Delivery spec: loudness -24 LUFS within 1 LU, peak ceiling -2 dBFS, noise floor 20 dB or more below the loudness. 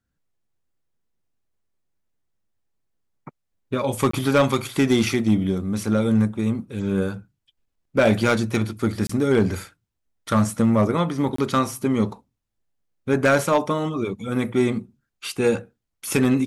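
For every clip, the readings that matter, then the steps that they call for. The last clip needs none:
clipped samples 0.3%; clipping level -10.5 dBFS; dropouts 3; longest dropout 24 ms; loudness -22.0 LUFS; peak level -10.5 dBFS; loudness target -24.0 LUFS
-> clip repair -10.5 dBFS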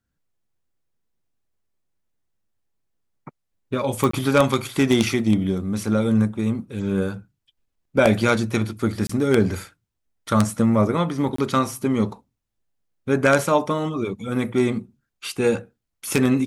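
clipped samples 0.0%; dropouts 3; longest dropout 24 ms
-> interpolate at 4.11/9.07/11.36 s, 24 ms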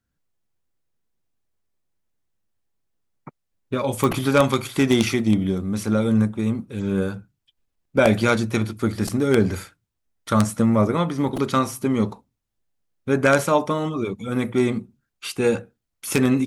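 dropouts 0; loudness -21.5 LUFS; peak level -1.5 dBFS; loudness target -24.0 LUFS
-> trim -2.5 dB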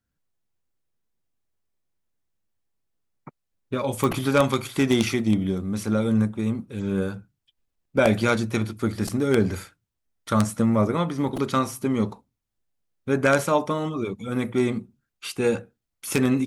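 loudness -24.0 LUFS; peak level -4.0 dBFS; noise floor -80 dBFS

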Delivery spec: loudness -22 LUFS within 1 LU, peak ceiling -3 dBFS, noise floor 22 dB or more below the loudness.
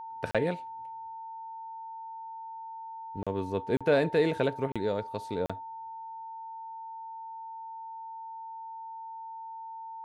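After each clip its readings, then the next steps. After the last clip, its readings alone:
dropouts 5; longest dropout 36 ms; steady tone 900 Hz; tone level -39 dBFS; loudness -34.5 LUFS; peak level -12.0 dBFS; loudness target -22.0 LUFS
-> interpolate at 0.31/3.23/3.77/4.72/5.46 s, 36 ms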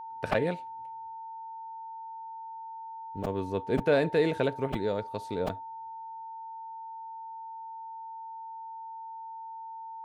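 dropouts 0; steady tone 900 Hz; tone level -39 dBFS
-> band-stop 900 Hz, Q 30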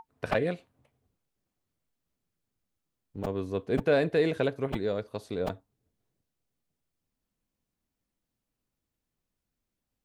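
steady tone not found; loudness -30.0 LUFS; peak level -12.0 dBFS; loudness target -22.0 LUFS
-> trim +8 dB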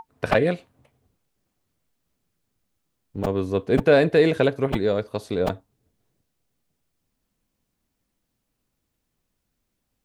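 loudness -22.0 LUFS; peak level -4.0 dBFS; noise floor -78 dBFS

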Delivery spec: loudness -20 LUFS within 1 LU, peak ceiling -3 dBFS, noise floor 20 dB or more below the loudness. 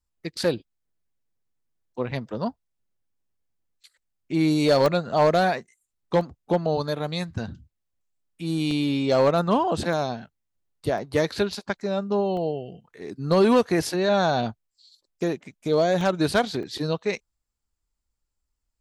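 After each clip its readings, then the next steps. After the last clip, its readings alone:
clipped samples 0.3%; clipping level -12.0 dBFS; dropouts 8; longest dropout 1.4 ms; loudness -24.5 LUFS; peak level -12.0 dBFS; loudness target -20.0 LUFS
-> clip repair -12 dBFS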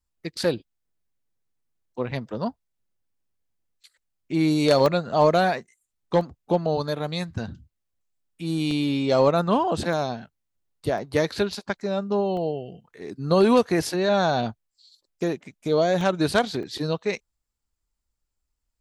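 clipped samples 0.0%; dropouts 8; longest dropout 1.4 ms
-> interpolate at 4.86/6.21/8.71/9.93/10.98/12.37/16.01/16.63 s, 1.4 ms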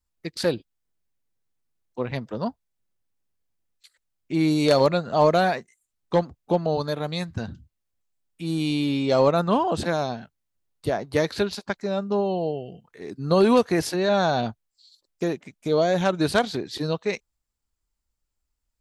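dropouts 0; loudness -24.0 LUFS; peak level -3.0 dBFS; loudness target -20.0 LUFS
-> trim +4 dB; peak limiter -3 dBFS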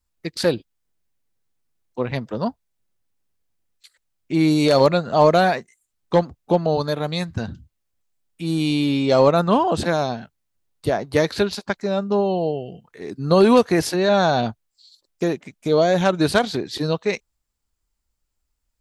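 loudness -20.0 LUFS; peak level -3.0 dBFS; noise floor -76 dBFS

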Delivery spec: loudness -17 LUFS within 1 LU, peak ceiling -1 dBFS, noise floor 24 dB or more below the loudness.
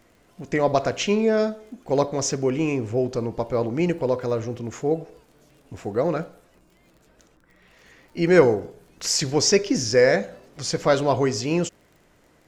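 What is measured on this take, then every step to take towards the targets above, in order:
tick rate 31 per s; loudness -22.5 LUFS; peak level -3.5 dBFS; loudness target -17.0 LUFS
-> de-click; trim +5.5 dB; peak limiter -1 dBFS

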